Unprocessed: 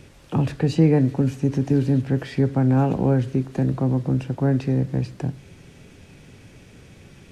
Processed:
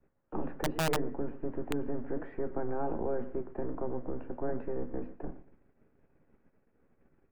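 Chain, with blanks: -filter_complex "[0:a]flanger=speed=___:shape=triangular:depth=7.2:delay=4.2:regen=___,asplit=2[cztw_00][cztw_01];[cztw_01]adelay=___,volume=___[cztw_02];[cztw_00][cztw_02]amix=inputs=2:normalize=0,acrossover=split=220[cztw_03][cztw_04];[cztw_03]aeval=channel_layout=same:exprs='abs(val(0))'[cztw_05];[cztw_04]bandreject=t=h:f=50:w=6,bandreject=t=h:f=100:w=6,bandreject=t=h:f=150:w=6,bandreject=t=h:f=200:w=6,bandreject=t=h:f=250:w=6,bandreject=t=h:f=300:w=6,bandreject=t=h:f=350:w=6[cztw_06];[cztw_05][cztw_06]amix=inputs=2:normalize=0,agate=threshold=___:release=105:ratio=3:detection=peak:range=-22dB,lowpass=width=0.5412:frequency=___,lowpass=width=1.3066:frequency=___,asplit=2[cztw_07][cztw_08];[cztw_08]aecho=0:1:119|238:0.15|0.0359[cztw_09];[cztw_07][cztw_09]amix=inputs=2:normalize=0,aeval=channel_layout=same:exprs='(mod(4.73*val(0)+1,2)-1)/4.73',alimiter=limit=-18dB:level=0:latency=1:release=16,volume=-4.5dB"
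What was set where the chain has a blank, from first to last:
1.3, 88, 13, -10.5dB, -44dB, 1.6k, 1.6k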